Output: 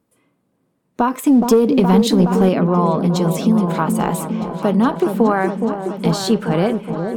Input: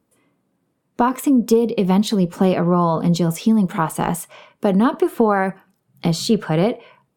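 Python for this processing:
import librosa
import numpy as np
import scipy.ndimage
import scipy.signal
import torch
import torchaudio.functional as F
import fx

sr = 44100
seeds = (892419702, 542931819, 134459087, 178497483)

y = fx.echo_opening(x, sr, ms=419, hz=750, octaves=1, feedback_pct=70, wet_db=-6)
y = fx.leveller(y, sr, passes=1, at=(1.26, 2.49))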